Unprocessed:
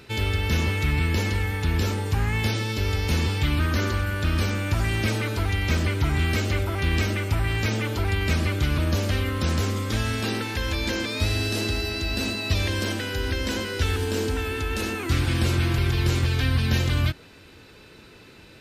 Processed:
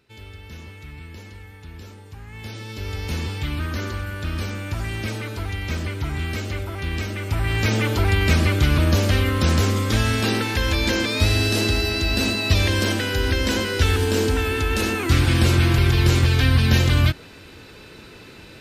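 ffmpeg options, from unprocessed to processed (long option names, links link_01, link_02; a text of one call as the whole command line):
ffmpeg -i in.wav -af "volume=5.5dB,afade=type=in:start_time=2.27:duration=0.77:silence=0.237137,afade=type=in:start_time=7.13:duration=0.68:silence=0.354813" out.wav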